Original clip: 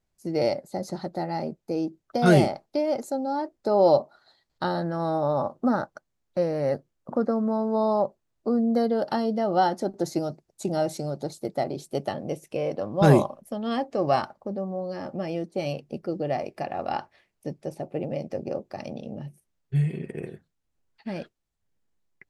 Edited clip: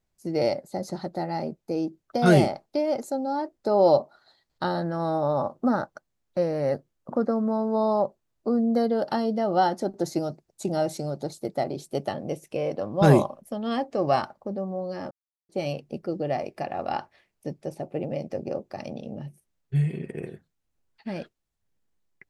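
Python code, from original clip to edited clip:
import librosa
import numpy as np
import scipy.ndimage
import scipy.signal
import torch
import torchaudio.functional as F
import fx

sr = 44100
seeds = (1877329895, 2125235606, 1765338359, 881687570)

y = fx.edit(x, sr, fx.silence(start_s=15.11, length_s=0.38), tone=tone)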